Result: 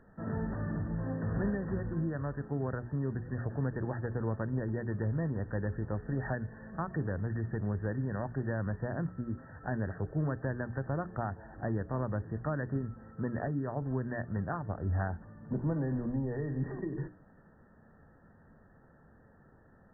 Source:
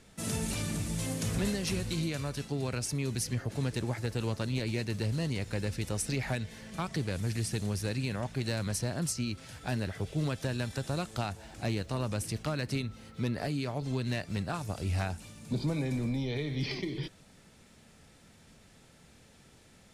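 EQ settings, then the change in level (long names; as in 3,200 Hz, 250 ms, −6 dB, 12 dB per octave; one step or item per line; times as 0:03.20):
linear-phase brick-wall low-pass 1,900 Hz
mains-hum notches 60/120/180/240/300/360/420 Hz
0.0 dB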